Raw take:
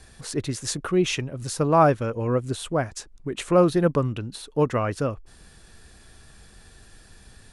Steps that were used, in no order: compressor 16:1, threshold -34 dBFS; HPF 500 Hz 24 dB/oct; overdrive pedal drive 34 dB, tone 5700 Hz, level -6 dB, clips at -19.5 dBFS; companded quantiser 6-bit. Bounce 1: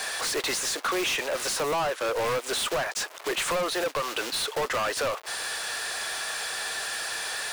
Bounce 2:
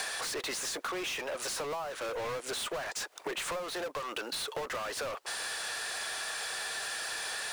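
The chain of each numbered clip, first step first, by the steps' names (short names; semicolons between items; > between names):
companded quantiser > HPF > compressor > overdrive pedal; HPF > overdrive pedal > companded quantiser > compressor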